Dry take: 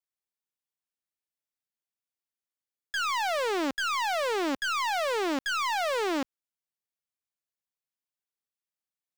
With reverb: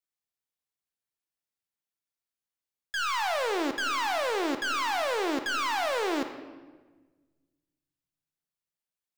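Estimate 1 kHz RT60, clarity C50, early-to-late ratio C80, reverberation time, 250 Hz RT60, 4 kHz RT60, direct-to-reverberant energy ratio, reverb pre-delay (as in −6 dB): 1.2 s, 8.5 dB, 10.5 dB, 1.3 s, 2.1 s, 0.95 s, 7.0 dB, 24 ms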